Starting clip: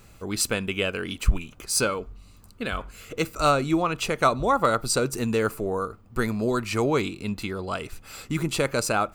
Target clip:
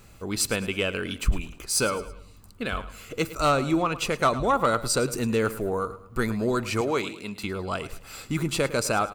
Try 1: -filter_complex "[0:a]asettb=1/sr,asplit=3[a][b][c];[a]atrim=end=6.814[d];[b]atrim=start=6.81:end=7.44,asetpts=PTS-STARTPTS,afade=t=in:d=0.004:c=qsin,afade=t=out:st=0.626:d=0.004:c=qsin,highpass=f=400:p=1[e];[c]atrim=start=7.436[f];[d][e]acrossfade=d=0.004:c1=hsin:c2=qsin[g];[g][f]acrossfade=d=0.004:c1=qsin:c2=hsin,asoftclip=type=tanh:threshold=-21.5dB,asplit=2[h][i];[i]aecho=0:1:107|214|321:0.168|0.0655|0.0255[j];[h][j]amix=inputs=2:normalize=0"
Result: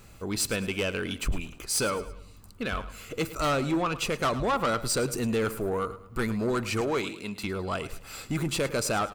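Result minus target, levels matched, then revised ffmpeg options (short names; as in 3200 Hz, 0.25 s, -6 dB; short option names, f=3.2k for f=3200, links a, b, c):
soft clip: distortion +11 dB
-filter_complex "[0:a]asettb=1/sr,asplit=3[a][b][c];[a]atrim=end=6.814[d];[b]atrim=start=6.81:end=7.44,asetpts=PTS-STARTPTS,afade=t=in:d=0.004:c=qsin,afade=t=out:st=0.626:d=0.004:c=qsin,highpass=f=400:p=1[e];[c]atrim=start=7.436[f];[d][e]acrossfade=d=0.004:c1=hsin:c2=qsin[g];[g][f]acrossfade=d=0.004:c1=qsin:c2=hsin,asoftclip=type=tanh:threshold=-11.5dB,asplit=2[h][i];[i]aecho=0:1:107|214|321:0.168|0.0655|0.0255[j];[h][j]amix=inputs=2:normalize=0"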